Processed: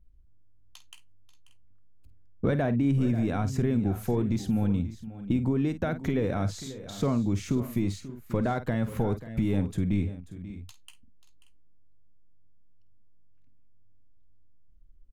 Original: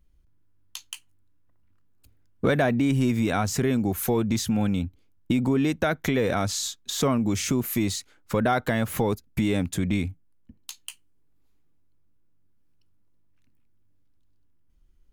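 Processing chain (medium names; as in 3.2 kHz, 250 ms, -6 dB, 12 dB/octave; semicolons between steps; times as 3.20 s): tilt EQ -2.5 dB/octave; multi-tap echo 50/537/582 ms -13/-15/-18.5 dB; trim -8 dB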